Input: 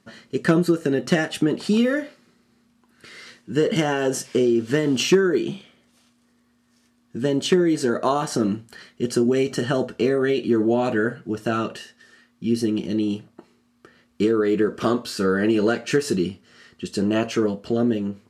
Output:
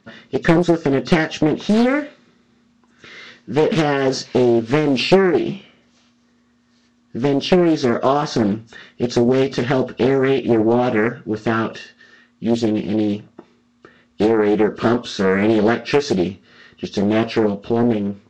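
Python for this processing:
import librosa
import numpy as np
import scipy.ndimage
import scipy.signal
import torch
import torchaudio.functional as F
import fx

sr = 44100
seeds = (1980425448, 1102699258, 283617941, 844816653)

y = fx.freq_compress(x, sr, knee_hz=2600.0, ratio=1.5)
y = fx.doppler_dist(y, sr, depth_ms=0.81)
y = y * 10.0 ** (4.5 / 20.0)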